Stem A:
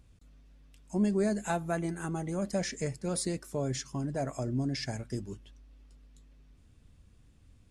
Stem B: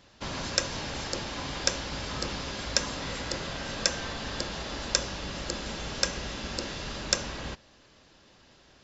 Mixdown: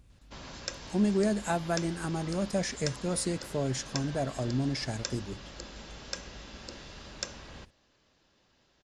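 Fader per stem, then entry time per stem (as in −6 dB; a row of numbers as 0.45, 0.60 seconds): +1.5, −10.5 decibels; 0.00, 0.10 seconds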